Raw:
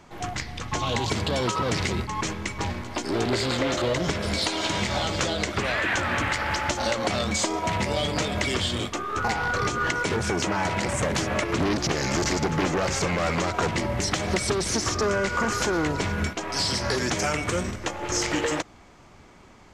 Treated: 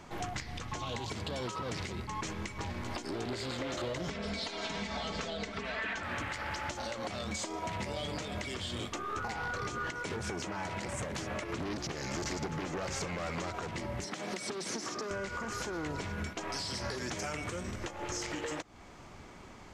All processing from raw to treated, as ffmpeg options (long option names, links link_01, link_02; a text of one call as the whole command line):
ffmpeg -i in.wav -filter_complex "[0:a]asettb=1/sr,asplit=3[link_01][link_02][link_03];[link_01]atrim=end=4.104[link_04];[link_02]atrim=start=4.1:end=6.03,asetpts=PTS-STARTPTS,afade=type=in:duration=0.004:curve=qsin,afade=type=out:start_time=1.926:duration=0.004:curve=qsin,lowpass=5900,aecho=1:1:4.5:0.84,atrim=end_sample=85113[link_05];[link_03]atrim=start=6.026[link_06];[link_04][link_05]acrossfade=duration=0.004:curve1=hsin:curve2=qsin[link_07];[link_07][link_06]acrossfade=duration=0.004:curve1=qsin:curve2=hsin,asettb=1/sr,asplit=3[link_08][link_09][link_10];[link_08]atrim=end=14.044[link_11];[link_09]atrim=start=14.04:end=15.11,asetpts=PTS-STARTPTS,afade=type=in:duration=0.004:curve=qsin,afade=type=out:start_time=1.066:duration=0.004:curve=qsin,highpass=frequency=170:width=0.5412,highpass=frequency=170:width=1.3066,acrossover=split=2200|7100[link_12][link_13][link_14];[link_12]acompressor=threshold=-27dB:ratio=4[link_15];[link_13]acompressor=threshold=-34dB:ratio=4[link_16];[link_14]acompressor=threshold=-44dB:ratio=4[link_17];[link_15][link_16][link_17]amix=inputs=3:normalize=0[link_18];[link_10]atrim=start=15.106[link_19];[link_11][link_18]acrossfade=duration=0.004:curve1=hsin:curve2=qsin[link_20];[link_20][link_19]acrossfade=duration=0.004:curve1=qsin:curve2=hsin,acompressor=threshold=-33dB:ratio=6,alimiter=level_in=2.5dB:limit=-24dB:level=0:latency=1:release=385,volume=-2.5dB" out.wav